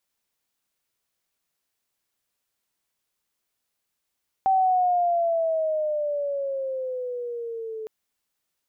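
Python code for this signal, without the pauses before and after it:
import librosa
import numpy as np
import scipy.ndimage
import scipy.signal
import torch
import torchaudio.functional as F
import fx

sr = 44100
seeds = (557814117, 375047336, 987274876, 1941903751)

y = fx.riser_tone(sr, length_s=3.41, level_db=-16.5, wave='sine', hz=773.0, rise_st=-10.0, swell_db=-14.5)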